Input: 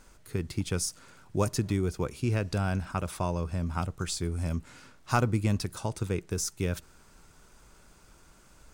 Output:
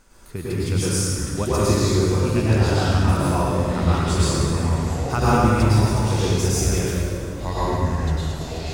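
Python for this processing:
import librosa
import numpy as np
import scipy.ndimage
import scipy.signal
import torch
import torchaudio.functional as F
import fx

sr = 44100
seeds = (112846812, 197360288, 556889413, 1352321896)

y = fx.echo_pitch(x, sr, ms=598, semitones=-5, count=3, db_per_echo=-6.0)
y = fx.rev_plate(y, sr, seeds[0], rt60_s=2.2, hf_ratio=0.75, predelay_ms=90, drr_db=-9.5)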